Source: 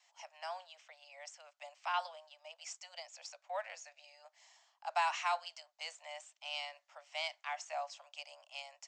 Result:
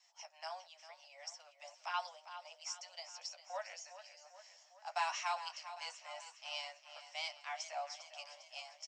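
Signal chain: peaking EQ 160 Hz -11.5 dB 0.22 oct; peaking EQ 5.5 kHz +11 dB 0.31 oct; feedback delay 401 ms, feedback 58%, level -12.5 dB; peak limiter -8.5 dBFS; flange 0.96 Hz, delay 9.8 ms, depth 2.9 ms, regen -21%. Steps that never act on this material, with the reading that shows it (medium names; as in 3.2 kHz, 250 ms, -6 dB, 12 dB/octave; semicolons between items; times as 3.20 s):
peaking EQ 160 Hz: input has nothing below 480 Hz; peak limiter -8.5 dBFS: peak at its input -20.5 dBFS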